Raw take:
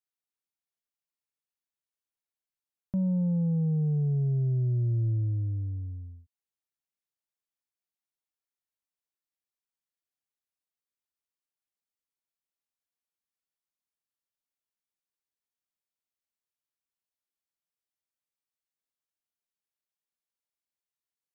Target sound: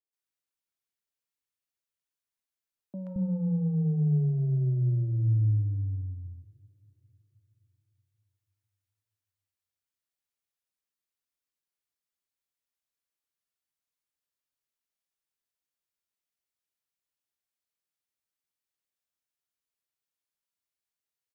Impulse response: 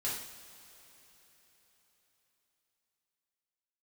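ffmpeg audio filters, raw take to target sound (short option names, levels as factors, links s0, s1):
-filter_complex "[0:a]acrossover=split=240|770[s0][s1][s2];[s2]adelay=130[s3];[s0]adelay=220[s4];[s4][s1][s3]amix=inputs=3:normalize=0,asplit=2[s5][s6];[1:a]atrim=start_sample=2205[s7];[s6][s7]afir=irnorm=-1:irlink=0,volume=0.211[s8];[s5][s8]amix=inputs=2:normalize=0"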